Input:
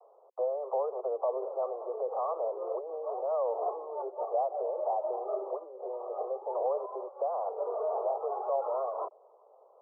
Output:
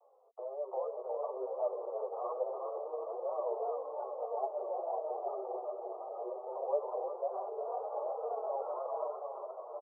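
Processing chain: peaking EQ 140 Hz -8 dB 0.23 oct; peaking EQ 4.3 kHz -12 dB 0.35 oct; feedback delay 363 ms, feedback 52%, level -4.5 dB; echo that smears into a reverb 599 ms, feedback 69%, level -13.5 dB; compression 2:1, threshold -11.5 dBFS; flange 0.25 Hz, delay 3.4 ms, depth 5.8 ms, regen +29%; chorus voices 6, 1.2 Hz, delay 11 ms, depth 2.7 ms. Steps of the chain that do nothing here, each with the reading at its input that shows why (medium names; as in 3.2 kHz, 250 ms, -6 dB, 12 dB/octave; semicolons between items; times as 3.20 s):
peaking EQ 140 Hz: input has nothing below 320 Hz; peaking EQ 4.3 kHz: input has nothing above 1.3 kHz; compression, threshold -11.5 dBFS: peak at its input -17.5 dBFS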